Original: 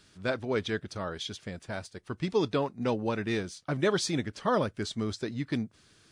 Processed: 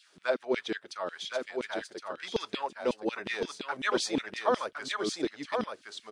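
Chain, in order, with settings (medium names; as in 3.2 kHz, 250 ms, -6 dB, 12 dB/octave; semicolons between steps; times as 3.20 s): LFO high-pass saw down 5.5 Hz 240–3500 Hz; delay 1065 ms -5 dB; trim -2.5 dB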